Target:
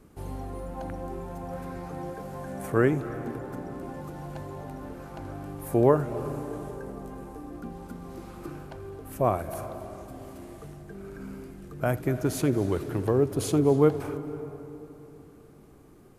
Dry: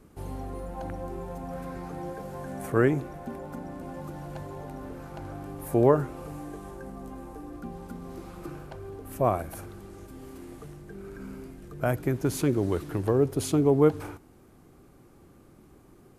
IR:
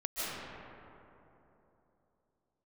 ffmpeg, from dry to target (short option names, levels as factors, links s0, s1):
-filter_complex "[0:a]asplit=2[s0][s1];[1:a]atrim=start_sample=2205,adelay=82[s2];[s1][s2]afir=irnorm=-1:irlink=0,volume=0.126[s3];[s0][s3]amix=inputs=2:normalize=0"